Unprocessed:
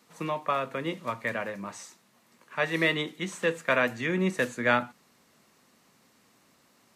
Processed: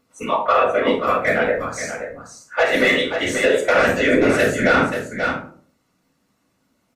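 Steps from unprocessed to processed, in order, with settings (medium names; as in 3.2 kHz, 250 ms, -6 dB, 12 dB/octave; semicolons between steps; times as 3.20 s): hum 50 Hz, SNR 17 dB; spectral noise reduction 20 dB; elliptic high-pass 230 Hz; comb 5.5 ms, depth 39%; saturation -19 dBFS, distortion -15 dB; whisper effect; delay 531 ms -9.5 dB; reverberation RT60 0.50 s, pre-delay 3 ms, DRR -1 dB; loudness maximiser +14 dB; trim -5 dB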